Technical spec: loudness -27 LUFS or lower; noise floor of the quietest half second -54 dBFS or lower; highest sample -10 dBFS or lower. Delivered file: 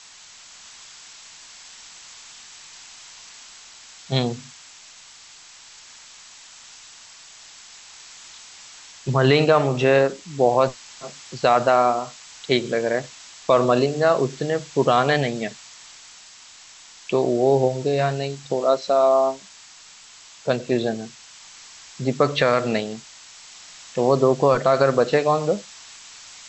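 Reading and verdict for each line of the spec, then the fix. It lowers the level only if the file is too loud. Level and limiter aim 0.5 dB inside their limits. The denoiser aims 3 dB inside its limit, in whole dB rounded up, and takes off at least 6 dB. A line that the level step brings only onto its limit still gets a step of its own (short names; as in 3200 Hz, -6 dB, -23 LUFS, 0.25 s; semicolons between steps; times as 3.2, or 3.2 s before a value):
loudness -20.5 LUFS: fail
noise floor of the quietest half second -46 dBFS: fail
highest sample -5.5 dBFS: fail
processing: denoiser 6 dB, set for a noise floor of -46 dBFS; gain -7 dB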